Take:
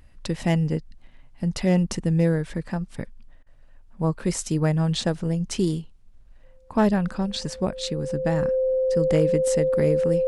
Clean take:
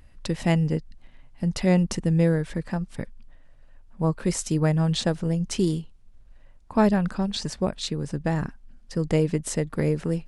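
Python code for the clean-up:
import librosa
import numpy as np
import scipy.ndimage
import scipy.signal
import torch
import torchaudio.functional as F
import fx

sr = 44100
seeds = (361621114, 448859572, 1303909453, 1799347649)

y = fx.fix_declip(x, sr, threshold_db=-10.5)
y = fx.notch(y, sr, hz=520.0, q=30.0)
y = fx.fix_interpolate(y, sr, at_s=(3.43,), length_ms=34.0)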